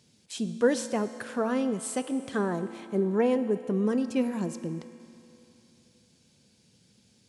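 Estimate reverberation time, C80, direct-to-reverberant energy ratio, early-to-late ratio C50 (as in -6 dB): 3.0 s, 12.0 dB, 10.0 dB, 11.0 dB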